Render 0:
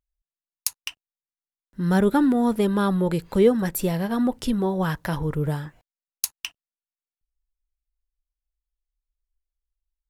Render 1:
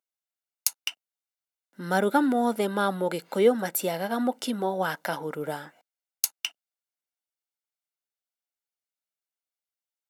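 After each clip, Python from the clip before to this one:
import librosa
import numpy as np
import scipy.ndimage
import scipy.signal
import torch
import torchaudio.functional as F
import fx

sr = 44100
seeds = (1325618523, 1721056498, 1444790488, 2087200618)

y = scipy.signal.sosfilt(scipy.signal.butter(4, 260.0, 'highpass', fs=sr, output='sos'), x)
y = y + 0.44 * np.pad(y, (int(1.4 * sr / 1000.0), 0))[:len(y)]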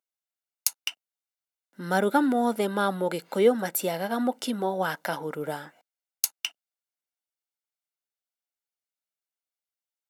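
y = x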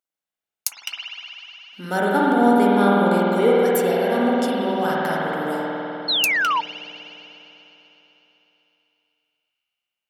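y = fx.rev_spring(x, sr, rt60_s=3.8, pass_ms=(50,), chirp_ms=75, drr_db=-6.0)
y = fx.spec_paint(y, sr, seeds[0], shape='fall', start_s=6.08, length_s=0.53, low_hz=880.0, high_hz=4400.0, level_db=-20.0)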